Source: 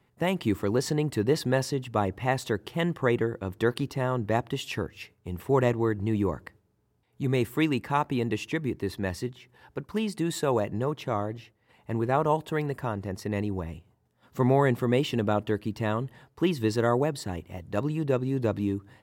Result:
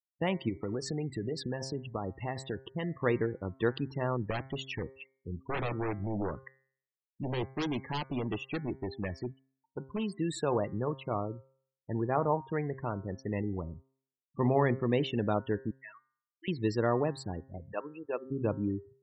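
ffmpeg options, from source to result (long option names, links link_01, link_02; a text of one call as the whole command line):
ffmpeg -i in.wav -filter_complex "[0:a]asplit=3[link_01][link_02][link_03];[link_01]afade=type=out:start_time=0.48:duration=0.02[link_04];[link_02]acompressor=threshold=-25dB:ratio=12:attack=3.2:release=140:knee=1:detection=peak,afade=type=in:start_time=0.48:duration=0.02,afade=type=out:start_time=2.91:duration=0.02[link_05];[link_03]afade=type=in:start_time=2.91:duration=0.02[link_06];[link_04][link_05][link_06]amix=inputs=3:normalize=0,asettb=1/sr,asplit=3[link_07][link_08][link_09];[link_07]atrim=end=4.304[link_10];[link_08]atrim=start=4.3:end=10.08,asetpts=PTS-STARTPTS,afade=type=in:duration=0.004:curve=qsin,afade=type=out:start_time=5.776:duration=0.004:curve=qsin,aeval=exprs='0.0708*(abs(mod(val(0)/0.0708+3,4)-2)-1)':channel_layout=same[link_11];[link_09]atrim=start=10.076[link_12];[link_10][link_11]acrossfade=duration=0.004:curve1=hsin:curve2=qsin[link_13];[link_13][link_12]acrossfade=duration=0.004:curve1=qsin:curve2=hsin,asettb=1/sr,asplit=3[link_14][link_15][link_16];[link_14]atrim=end=11.054[link_17];[link_15]atrim=start=11.05:end=12.84,asetpts=PTS-STARTPTS,afade=type=in:duration=0.004:curve=qsin,afade=type=out:start_time=1.786:duration=0.004:curve=qsin,lowpass=frequency=2800:poles=1[link_18];[link_16]atrim=start=12.836[link_19];[link_17][link_18]acrossfade=duration=0.004:curve1=hsin:curve2=qsin[link_20];[link_20][link_19]acrossfade=duration=0.004:curve1=qsin:curve2=hsin,asettb=1/sr,asplit=3[link_21][link_22][link_23];[link_21]atrim=end=15.714[link_24];[link_22]atrim=start=15.71:end=16.48,asetpts=PTS-STARTPTS,afade=type=in:duration=0.004:curve=qsin,afade=type=out:start_time=0.766:duration=0.004:curve=qsin,bandpass=frequency=2200:width_type=q:width=3.5[link_25];[link_23]atrim=start=16.476[link_26];[link_24][link_25]acrossfade=duration=0.004:curve1=hsin:curve2=qsin[link_27];[link_27][link_26]acrossfade=duration=0.004:curve1=qsin:curve2=hsin,asplit=3[link_28][link_29][link_30];[link_28]afade=type=out:start_time=17.72:duration=0.02[link_31];[link_29]highpass=530,afade=type=in:start_time=17.72:duration=0.02,afade=type=out:start_time=18.3:duration=0.02[link_32];[link_30]afade=type=in:start_time=18.3:duration=0.02[link_33];[link_31][link_32][link_33]amix=inputs=3:normalize=0,afftfilt=real='re*gte(hypot(re,im),0.0224)':imag='im*gte(hypot(re,im),0.0224)':win_size=1024:overlap=0.75,bandreject=frequency=133.3:width_type=h:width=4,bandreject=frequency=266.6:width_type=h:width=4,bandreject=frequency=399.9:width_type=h:width=4,bandreject=frequency=533.2:width_type=h:width=4,bandreject=frequency=666.5:width_type=h:width=4,bandreject=frequency=799.8:width_type=h:width=4,bandreject=frequency=933.1:width_type=h:width=4,bandreject=frequency=1066.4:width_type=h:width=4,bandreject=frequency=1199.7:width_type=h:width=4,bandreject=frequency=1333:width_type=h:width=4,bandreject=frequency=1466.3:width_type=h:width=4,bandreject=frequency=1599.6:width_type=h:width=4,bandreject=frequency=1732.9:width_type=h:width=4,bandreject=frequency=1866.2:width_type=h:width=4,bandreject=frequency=1999.5:width_type=h:width=4,bandreject=frequency=2132.8:width_type=h:width=4,bandreject=frequency=2266.1:width_type=h:width=4,volume=-4dB" out.wav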